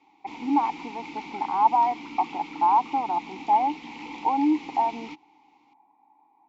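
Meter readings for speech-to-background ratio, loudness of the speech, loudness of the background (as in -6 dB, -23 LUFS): 15.0 dB, -25.0 LUFS, -40.0 LUFS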